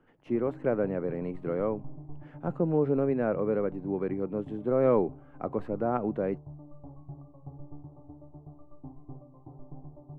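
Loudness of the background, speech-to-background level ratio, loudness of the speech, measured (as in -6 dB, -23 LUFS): -47.5 LUFS, 17.5 dB, -30.0 LUFS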